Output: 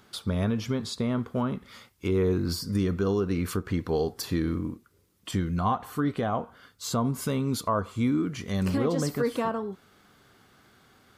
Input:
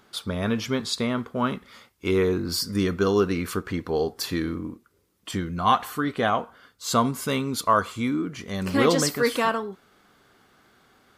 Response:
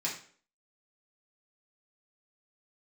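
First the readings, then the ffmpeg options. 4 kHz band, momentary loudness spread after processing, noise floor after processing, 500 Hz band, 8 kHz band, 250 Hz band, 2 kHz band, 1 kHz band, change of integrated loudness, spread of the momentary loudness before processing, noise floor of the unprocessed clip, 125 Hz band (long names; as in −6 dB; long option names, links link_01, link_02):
−7.5 dB, 8 LU, −63 dBFS, −4.0 dB, −6.5 dB, −1.5 dB, −9.5 dB, −7.0 dB, −3.5 dB, 10 LU, −64 dBFS, +2.0 dB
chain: -filter_complex "[0:a]lowpass=frequency=2700:poles=1,equalizer=frequency=99:width_type=o:width=2.2:gain=7,acrossover=split=1100[link_01][link_02];[link_02]acompressor=threshold=-41dB:ratio=6[link_03];[link_01][link_03]amix=inputs=2:normalize=0,alimiter=limit=-15dB:level=0:latency=1:release=196,crystalizer=i=3.5:c=0,volume=-2dB"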